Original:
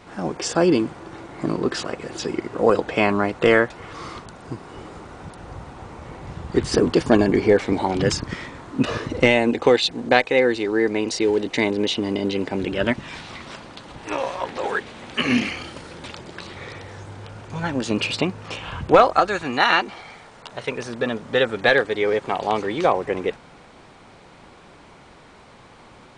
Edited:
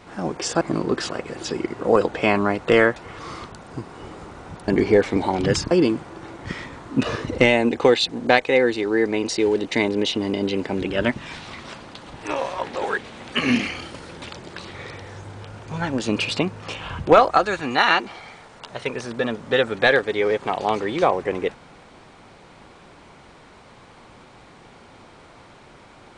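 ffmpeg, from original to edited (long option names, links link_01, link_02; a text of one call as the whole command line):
ffmpeg -i in.wav -filter_complex "[0:a]asplit=5[link_01][link_02][link_03][link_04][link_05];[link_01]atrim=end=0.612[link_06];[link_02]atrim=start=1.348:end=5.422[link_07];[link_03]atrim=start=7.238:end=8.272[link_08];[link_04]atrim=start=0.608:end=1.352[link_09];[link_05]atrim=start=8.268[link_10];[link_06][link_07]acrossfade=duration=0.004:curve1=hsin:curve2=hsin[link_11];[link_11][link_08]acrossfade=duration=0.004:curve1=hsin:curve2=hsin[link_12];[link_12][link_09]acrossfade=duration=0.004:curve1=hsin:curve2=hsin[link_13];[link_13][link_10]acrossfade=duration=0.004:curve1=hsin:curve2=hsin" out.wav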